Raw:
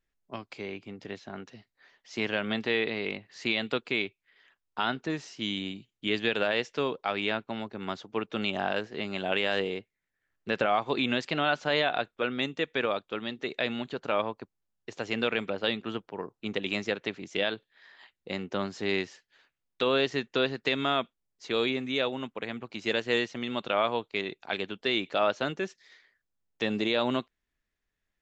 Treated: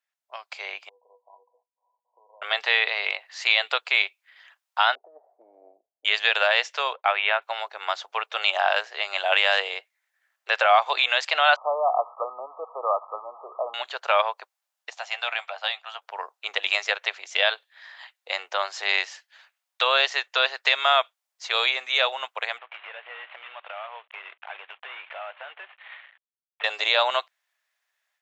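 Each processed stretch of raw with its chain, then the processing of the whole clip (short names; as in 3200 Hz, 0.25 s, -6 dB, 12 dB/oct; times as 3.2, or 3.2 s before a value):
0.89–2.42 compressor 3:1, threshold -36 dBFS + brick-wall FIR low-pass 1100 Hz + resonator 490 Hz, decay 0.16 s, mix 90%
4.95–6.05 elliptic low-pass 700 Hz, stop band 80 dB + negative-ratio compressor -35 dBFS, ratio -0.5
6.93–7.42 LPF 3100 Hz 24 dB/oct + expander -51 dBFS
11.56–13.74 switching spikes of -21 dBFS + brick-wall FIR low-pass 1300 Hz
14.9–16.02 ladder high-pass 610 Hz, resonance 55% + tilt shelf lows -4 dB, about 1100 Hz + doubler 13 ms -12 dB
22.58–26.64 CVSD 16 kbps + compressor 4:1, threshold -46 dBFS + high shelf 2300 Hz +7.5 dB
whole clip: steep high-pass 630 Hz 36 dB/oct; AGC gain up to 10 dB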